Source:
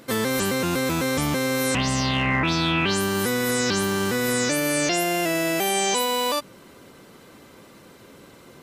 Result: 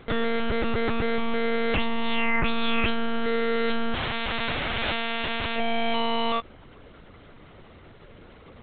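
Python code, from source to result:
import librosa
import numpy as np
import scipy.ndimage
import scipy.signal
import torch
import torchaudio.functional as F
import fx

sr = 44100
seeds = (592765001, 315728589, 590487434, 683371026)

y = fx.spec_flatten(x, sr, power=0.22, at=(3.93, 5.56), fade=0.02)
y = fx.lpc_monotone(y, sr, seeds[0], pitch_hz=230.0, order=10)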